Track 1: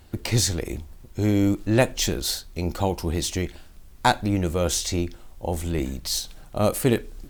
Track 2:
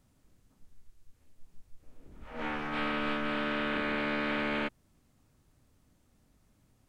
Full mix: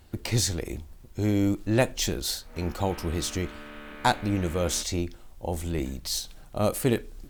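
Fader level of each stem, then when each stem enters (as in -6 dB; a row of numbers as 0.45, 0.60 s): -3.5, -11.5 dB; 0.00, 0.15 s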